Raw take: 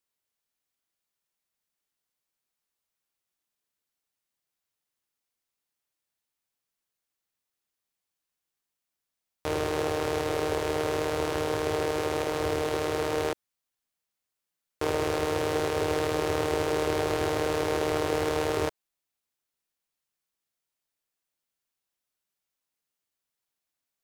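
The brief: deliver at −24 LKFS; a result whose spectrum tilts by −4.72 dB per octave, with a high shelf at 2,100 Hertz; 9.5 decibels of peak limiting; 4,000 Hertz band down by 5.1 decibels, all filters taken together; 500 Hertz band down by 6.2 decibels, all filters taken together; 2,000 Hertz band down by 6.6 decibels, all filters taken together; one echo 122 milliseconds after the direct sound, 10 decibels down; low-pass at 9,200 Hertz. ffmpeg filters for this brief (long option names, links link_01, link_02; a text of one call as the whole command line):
ffmpeg -i in.wav -af "lowpass=9200,equalizer=frequency=500:width_type=o:gain=-7,equalizer=frequency=2000:width_type=o:gain=-8.5,highshelf=frequency=2100:gain=3.5,equalizer=frequency=4000:width_type=o:gain=-7,alimiter=level_in=1dB:limit=-24dB:level=0:latency=1,volume=-1dB,aecho=1:1:122:0.316,volume=13.5dB" out.wav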